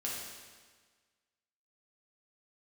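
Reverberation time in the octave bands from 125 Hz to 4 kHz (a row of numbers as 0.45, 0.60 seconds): 1.5, 1.5, 1.5, 1.5, 1.5, 1.4 seconds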